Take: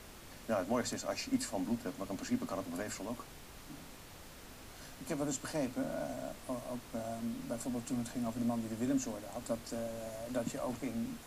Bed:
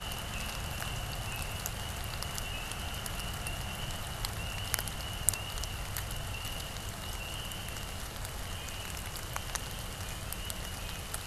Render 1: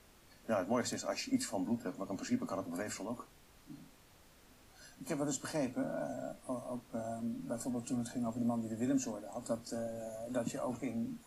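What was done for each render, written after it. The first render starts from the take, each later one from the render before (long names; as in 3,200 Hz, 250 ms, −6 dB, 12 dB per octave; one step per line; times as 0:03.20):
noise reduction from a noise print 10 dB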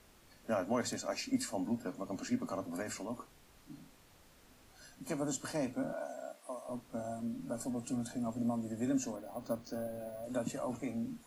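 0:05.93–0:06.69: high-pass filter 470 Hz
0:09.16–0:10.24: bad sample-rate conversion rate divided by 4×, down filtered, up hold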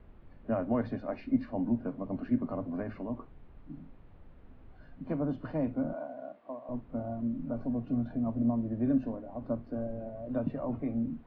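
Bessel low-pass filter 2,200 Hz, order 8
spectral tilt −3 dB per octave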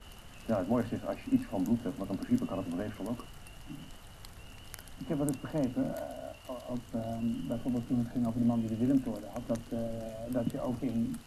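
mix in bed −14.5 dB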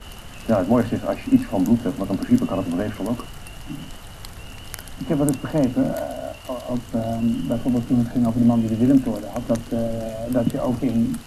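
level +12 dB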